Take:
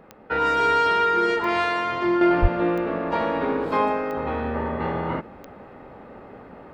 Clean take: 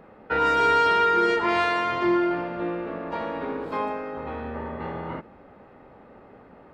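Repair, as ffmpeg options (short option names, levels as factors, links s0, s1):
-filter_complex "[0:a]adeclick=t=4,asplit=3[s0][s1][s2];[s0]afade=t=out:st=2.41:d=0.02[s3];[s1]highpass=f=140:w=0.5412,highpass=f=140:w=1.3066,afade=t=in:st=2.41:d=0.02,afade=t=out:st=2.53:d=0.02[s4];[s2]afade=t=in:st=2.53:d=0.02[s5];[s3][s4][s5]amix=inputs=3:normalize=0,asetnsamples=n=441:p=0,asendcmd='2.21 volume volume -6.5dB',volume=1"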